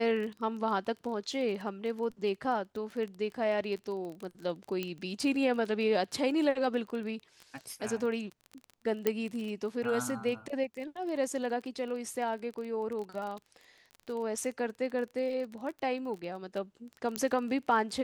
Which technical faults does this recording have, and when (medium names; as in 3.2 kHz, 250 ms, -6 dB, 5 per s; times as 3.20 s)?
crackle 22 per s -37 dBFS
4.83 s: pop -20 dBFS
9.07 s: pop -14 dBFS
17.16 s: pop -16 dBFS